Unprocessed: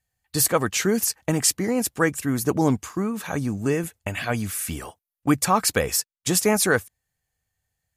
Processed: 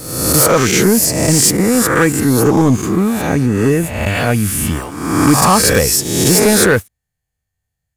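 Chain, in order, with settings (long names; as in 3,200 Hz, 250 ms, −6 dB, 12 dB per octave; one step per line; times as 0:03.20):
peak hold with a rise ahead of every peak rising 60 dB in 1.02 s
low-shelf EQ 320 Hz +7 dB
leveller curve on the samples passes 2
level −1 dB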